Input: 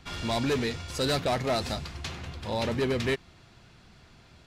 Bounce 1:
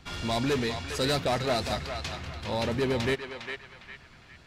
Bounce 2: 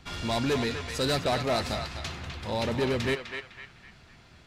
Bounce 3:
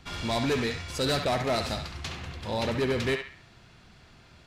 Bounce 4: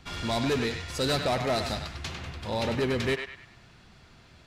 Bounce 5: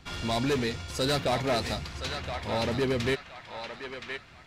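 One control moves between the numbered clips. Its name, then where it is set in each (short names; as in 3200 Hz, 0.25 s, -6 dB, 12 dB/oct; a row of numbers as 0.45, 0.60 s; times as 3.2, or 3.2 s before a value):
narrowing echo, time: 406, 253, 68, 101, 1020 ms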